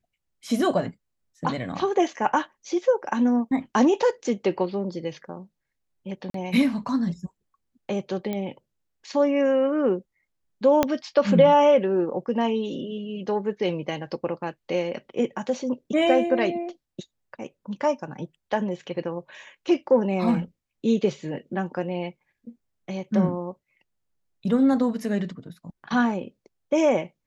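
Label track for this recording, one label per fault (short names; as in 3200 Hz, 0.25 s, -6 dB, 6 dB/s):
6.300000	6.340000	gap 43 ms
8.330000	8.330000	pop -17 dBFS
10.830000	10.830000	pop -6 dBFS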